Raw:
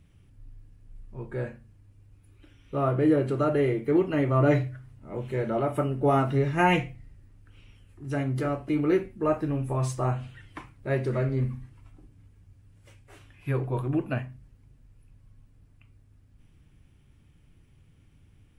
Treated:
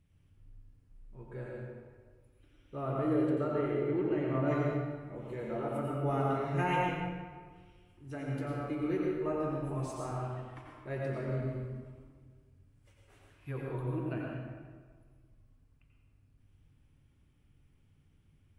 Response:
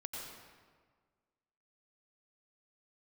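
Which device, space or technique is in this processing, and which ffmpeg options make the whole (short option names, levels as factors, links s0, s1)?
stairwell: -filter_complex "[0:a]asettb=1/sr,asplit=3[s0][s1][s2];[s0]atrim=end=3.294[s3];[s1]atrim=start=3.29:end=4.48,asetpts=PTS-STARTPTS,afade=t=in:d=0.004:c=qsin,afade=t=out:st=1.186:d=0.004:c=qsin,highshelf=f=5800:g=-11[s4];[s2]atrim=start=4.476[s5];[s3][s4]acrossfade=d=0.004:c1=hsin:c2=qsin[s6];[s6][s5]acrossfade=d=0.004:c1=qsin:c2=hsin[s7];[1:a]atrim=start_sample=2205[s8];[s7][s8]afir=irnorm=-1:irlink=0,volume=0.447"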